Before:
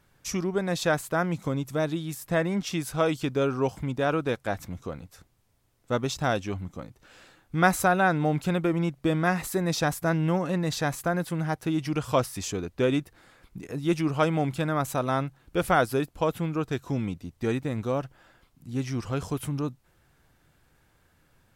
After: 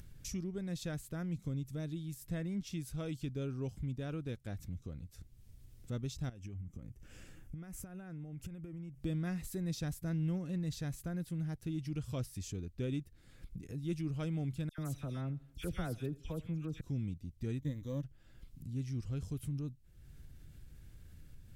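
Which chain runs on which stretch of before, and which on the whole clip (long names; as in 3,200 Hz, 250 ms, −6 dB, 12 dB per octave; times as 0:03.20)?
0:06.29–0:09.01: parametric band 4,000 Hz −14.5 dB 0.37 octaves + downward compressor 20 to 1, threshold −35 dBFS
0:14.69–0:16.81: all-pass dispersion lows, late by 91 ms, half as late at 2,100 Hz + repeating echo 84 ms, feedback 44%, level −21.5 dB
0:17.60–0:18.04: mu-law and A-law mismatch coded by A + EQ curve with evenly spaced ripples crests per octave 1.1, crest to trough 12 dB
whole clip: guitar amp tone stack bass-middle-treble 10-0-1; upward compression, threshold −45 dBFS; level +6.5 dB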